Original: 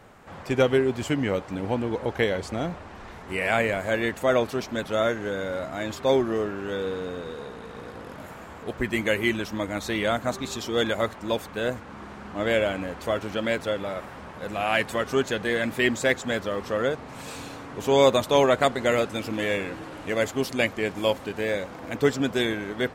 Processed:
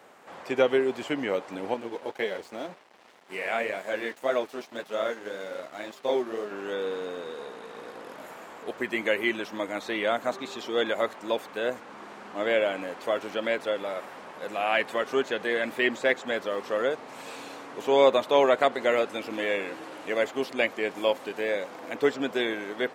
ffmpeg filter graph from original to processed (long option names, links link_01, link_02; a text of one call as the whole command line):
ffmpeg -i in.wav -filter_complex "[0:a]asettb=1/sr,asplit=3[link_01][link_02][link_03];[link_01]atrim=end=1.744[link_04];[link_02]atrim=start=1.74:end=6.51,asetpts=PTS-STARTPTS,afade=type=in:duration=0.004:curve=qsin,afade=type=out:start_time=4.766:duration=0.004:curve=qsin,flanger=delay=4.6:depth=8.5:regen=-24:speed=1.9:shape=sinusoidal,aeval=exprs='sgn(val(0))*max(abs(val(0))-0.00562,0)':channel_layout=same[link_05];[link_03]atrim=start=6.506[link_06];[link_04][link_05]acrossfade=duration=0.004:curve1=hsin:curve2=qsin[link_07];[link_07][link_06]acrossfade=duration=0.004:curve1=qsin:curve2=hsin,acrossover=split=3700[link_08][link_09];[link_09]acompressor=threshold=-49dB:ratio=4:attack=1:release=60[link_10];[link_08][link_10]amix=inputs=2:normalize=0,highpass=340,equalizer=frequency=1400:width_type=o:width=0.77:gain=-2" out.wav